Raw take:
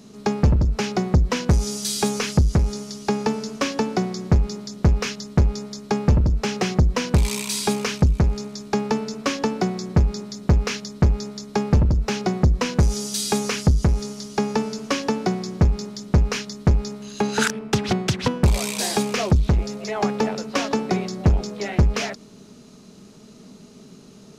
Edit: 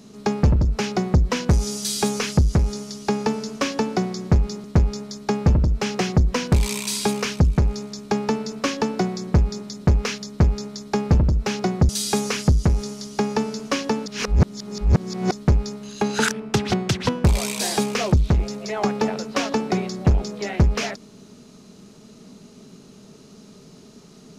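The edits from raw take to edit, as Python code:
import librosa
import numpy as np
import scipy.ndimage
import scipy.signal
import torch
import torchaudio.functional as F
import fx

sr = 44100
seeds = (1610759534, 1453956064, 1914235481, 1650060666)

y = fx.edit(x, sr, fx.cut(start_s=4.64, length_s=0.62),
    fx.cut(start_s=12.51, length_s=0.57),
    fx.reverse_span(start_s=15.25, length_s=1.26), tone=tone)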